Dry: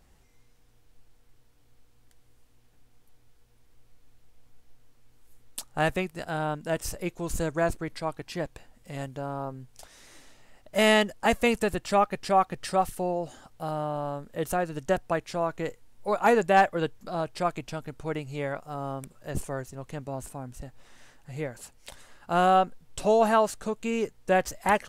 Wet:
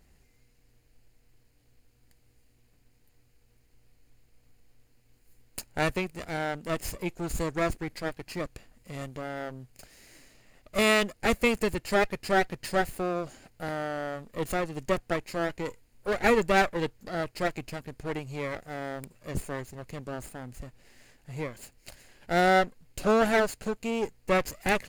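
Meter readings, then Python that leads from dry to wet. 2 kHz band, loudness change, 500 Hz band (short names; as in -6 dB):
+1.5 dB, -1.5 dB, -1.5 dB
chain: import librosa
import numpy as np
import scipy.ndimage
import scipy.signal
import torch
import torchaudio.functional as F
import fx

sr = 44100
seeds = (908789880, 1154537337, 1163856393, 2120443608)

y = fx.lower_of_two(x, sr, delay_ms=0.43)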